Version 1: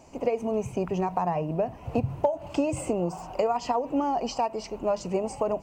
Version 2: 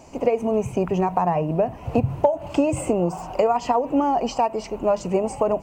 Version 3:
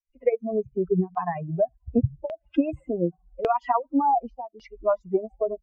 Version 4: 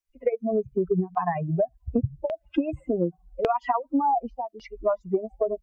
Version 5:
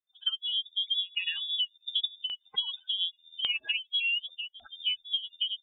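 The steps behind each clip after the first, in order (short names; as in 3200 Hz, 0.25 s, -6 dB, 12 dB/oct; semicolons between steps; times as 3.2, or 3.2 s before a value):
dynamic EQ 4900 Hz, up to -6 dB, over -54 dBFS, Q 1.5; gain +6 dB
per-bin expansion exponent 3; LFO low-pass saw down 0.87 Hz 240–2900 Hz; gain +1.5 dB
compressor, threshold -24 dBFS, peak gain reduction 9 dB; gain +4 dB
inverted band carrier 3600 Hz; gain -6.5 dB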